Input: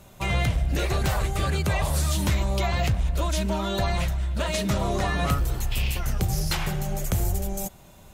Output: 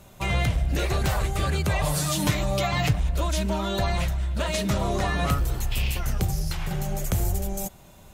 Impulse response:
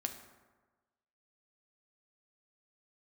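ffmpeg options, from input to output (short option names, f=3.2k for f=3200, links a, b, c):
-filter_complex "[0:a]asettb=1/sr,asplit=3[a][b][c];[a]atrim=end=1.834[d];[b]atrim=start=1.83:end=3,asetpts=PTS-STARTPTS,afade=t=in:d=0.004:c=qsin,afade=t=out:st=1.166:d=0.004:c=qsin,aecho=1:1:6.7:0.89,atrim=end_sample=51597[e];[c]atrim=start=2.996[f];[d][e]acrossfade=d=0.004:c1=hsin:c2=qsin[g];[g][f]acrossfade=d=0.004:c1=qsin:c2=hsin,asettb=1/sr,asplit=3[h][i][j];[h]atrim=end=6.304[k];[i]atrim=start=6.3:end=6.71,asetpts=PTS-STARTPTS,afade=t=in:d=0.004:c=qsin,afade=t=out:st=0.406:d=0.004:c=qsin,acrossover=split=140[l][m];[m]acompressor=threshold=-33dB:ratio=6[n];[l][n]amix=inputs=2:normalize=0[o];[j]atrim=start=6.706[p];[k][o]acrossfade=d=0.004:c1=hsin:c2=qsin[q];[q][p]acrossfade=d=0.004:c1=qsin:c2=hsin"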